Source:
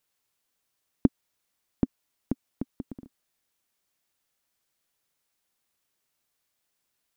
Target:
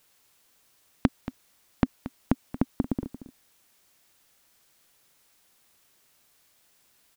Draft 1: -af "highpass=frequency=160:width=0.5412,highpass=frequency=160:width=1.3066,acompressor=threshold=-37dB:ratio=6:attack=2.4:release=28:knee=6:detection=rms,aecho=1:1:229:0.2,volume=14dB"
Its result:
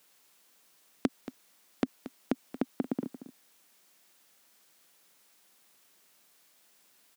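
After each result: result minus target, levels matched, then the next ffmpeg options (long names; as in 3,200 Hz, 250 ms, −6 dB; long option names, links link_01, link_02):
125 Hz band −8.0 dB; downward compressor: peak gain reduction +5.5 dB
-af "acompressor=threshold=-37dB:ratio=6:attack=2.4:release=28:knee=6:detection=rms,aecho=1:1:229:0.2,volume=14dB"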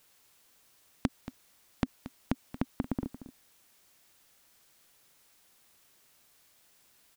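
downward compressor: peak gain reduction +7.5 dB
-af "acompressor=threshold=-28dB:ratio=6:attack=2.4:release=28:knee=6:detection=rms,aecho=1:1:229:0.2,volume=14dB"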